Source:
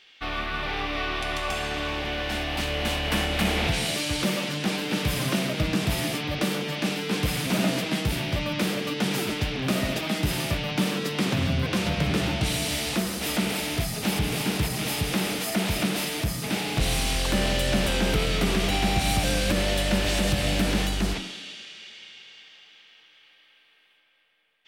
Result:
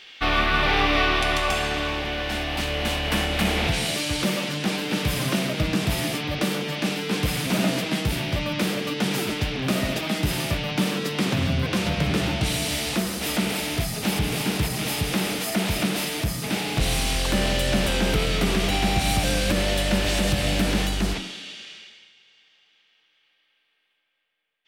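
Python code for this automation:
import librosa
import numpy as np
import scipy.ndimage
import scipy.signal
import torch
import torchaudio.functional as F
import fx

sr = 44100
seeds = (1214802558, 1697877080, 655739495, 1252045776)

y = fx.gain(x, sr, db=fx.line((0.92, 9.0), (2.09, 1.5), (21.74, 1.5), (22.14, -9.5)))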